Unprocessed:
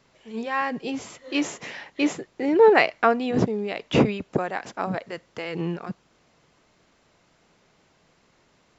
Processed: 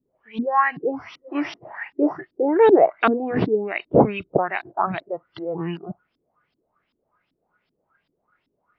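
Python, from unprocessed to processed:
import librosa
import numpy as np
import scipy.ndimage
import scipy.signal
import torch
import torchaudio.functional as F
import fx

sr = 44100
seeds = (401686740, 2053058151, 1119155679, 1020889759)

y = fx.freq_compress(x, sr, knee_hz=3500.0, ratio=1.5)
y = fx.filter_lfo_lowpass(y, sr, shape='saw_up', hz=2.6, low_hz=250.0, high_hz=3800.0, q=4.3)
y = fx.noise_reduce_blind(y, sr, reduce_db=15)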